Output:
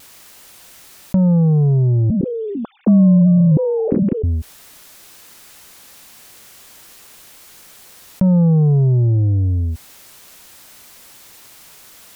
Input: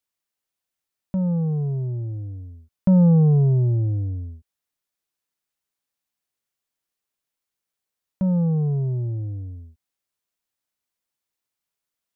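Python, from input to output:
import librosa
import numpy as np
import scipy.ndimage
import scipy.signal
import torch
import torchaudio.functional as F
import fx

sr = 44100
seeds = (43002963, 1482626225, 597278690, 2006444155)

y = fx.sine_speech(x, sr, at=(2.1, 4.24))
y = fx.vibrato(y, sr, rate_hz=0.84, depth_cents=18.0)
y = fx.env_flatten(y, sr, amount_pct=70)
y = y * librosa.db_to_amplitude(2.0)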